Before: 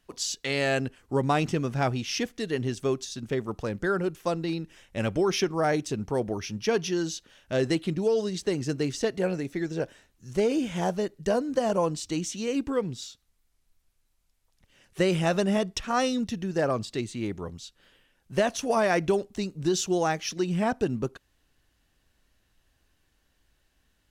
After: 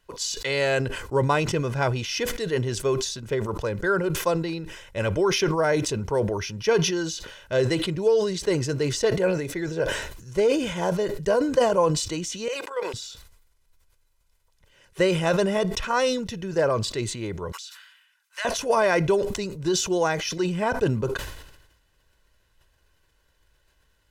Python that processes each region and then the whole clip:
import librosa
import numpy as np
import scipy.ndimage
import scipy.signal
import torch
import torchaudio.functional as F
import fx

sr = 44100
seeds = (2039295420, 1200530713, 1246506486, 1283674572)

y = fx.chain(x, sr, fx.highpass(hz=550.0, slope=24),
    fx.level_steps(step_db=10), at=(12.48, 12.94))
y = fx.chain(y, sr, fx.highpass(hz=1200.0, slope=24),
    fx.notch(hz=3200.0, q=28.0), at=(17.52, 18.45))
y = fx.peak_eq(y, sr, hz=1100.0, db=3.5, octaves=2.0)
y = y + 0.53 * np.pad(y, (int(2.0 * sr / 1000.0), 0))[:len(y)]
y = fx.sustainer(y, sr, db_per_s=56.0)